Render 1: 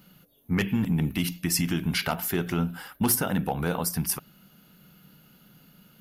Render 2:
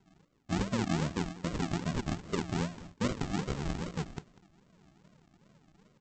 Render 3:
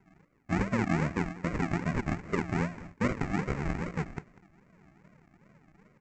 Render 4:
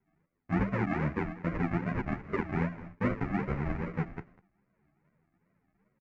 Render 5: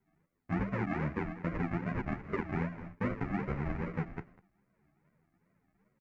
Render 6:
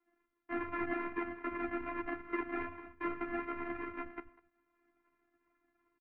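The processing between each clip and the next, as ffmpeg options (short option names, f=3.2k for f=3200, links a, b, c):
-af "equalizer=f=400:t=o:w=0.29:g=4,aresample=16000,acrusher=samples=26:mix=1:aa=0.000001:lfo=1:lforange=15.6:lforate=2.5,aresample=44100,aecho=1:1:195:0.119,volume=-6.5dB"
-af "highshelf=f=2.7k:t=q:w=3:g=-7,volume=2.5dB"
-filter_complex "[0:a]lowpass=2.5k,agate=range=-12dB:threshold=-53dB:ratio=16:detection=peak,asplit=2[a][b];[b]adelay=10.3,afreqshift=0.8[c];[a][c]amix=inputs=2:normalize=1,volume=2dB"
-af "acompressor=threshold=-32dB:ratio=2"
-filter_complex "[0:a]highpass=f=110:w=0.5412,highpass=f=110:w=1.3066,equalizer=f=400:t=q:w=4:g=-4,equalizer=f=600:t=q:w=4:g=-9,equalizer=f=1.2k:t=q:w=4:g=4,lowpass=f=3.4k:w=0.5412,lowpass=f=3.4k:w=1.3066,acrossover=split=150[a][b];[a]adelay=70[c];[c][b]amix=inputs=2:normalize=0,afftfilt=real='hypot(re,im)*cos(PI*b)':imag='0':win_size=512:overlap=0.75,volume=4dB"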